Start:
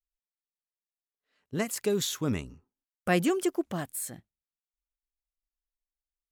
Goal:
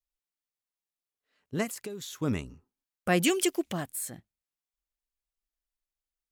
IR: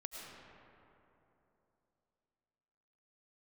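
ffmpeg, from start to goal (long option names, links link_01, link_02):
-filter_complex "[0:a]asettb=1/sr,asplit=3[link_01][link_02][link_03];[link_01]atrim=end=1.704[link_04];[link_02]atrim=start=1.7:end=2.22,asetpts=PTS-STARTPTS,afade=type=in:duration=0.004:curve=qsin,afade=type=out:start_time=0.516:duration=0.004:curve=qsin,acompressor=threshold=-38dB:ratio=5[link_05];[link_03]atrim=start=2.216[link_06];[link_04][link_05]acrossfade=duration=0.004:curve1=hsin:curve2=qsin[link_07];[link_07][link_06]acrossfade=duration=0.004:curve1=qsin:curve2=hsin,asettb=1/sr,asplit=3[link_08][link_09][link_10];[link_08]atrim=end=3.234[link_11];[link_09]atrim=start=3.23:end=3.73,asetpts=PTS-STARTPTS,afade=type=in:duration=0.004:curve=qsin,afade=type=out:start_time=0.496:duration=0.004:curve=qsin,highshelf=frequency=1800:width_type=q:width=1.5:gain=8.5[link_12];[link_10]atrim=start=3.726[link_13];[link_11][link_12]acrossfade=duration=0.004:curve1=hsin:curve2=qsin[link_14];[link_14][link_13]acrossfade=duration=0.004:curve1=qsin:curve2=hsin"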